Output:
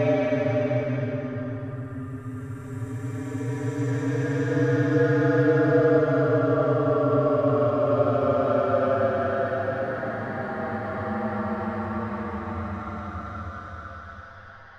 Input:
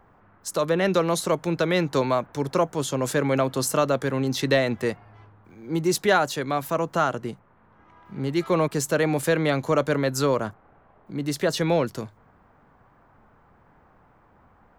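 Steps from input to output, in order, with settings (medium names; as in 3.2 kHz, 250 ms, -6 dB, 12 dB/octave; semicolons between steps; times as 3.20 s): frequency axis rescaled in octaves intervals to 114%; low-pass that closes with the level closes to 2 kHz, closed at -22.5 dBFS; repeats whose band climbs or falls 148 ms, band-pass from 1.4 kHz, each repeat 1.4 oct, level -5 dB; in parallel at -6 dB: hysteresis with a dead band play -29.5 dBFS; on the sum: Paulstretch 31×, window 0.10 s, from 10.07 s; trim -1.5 dB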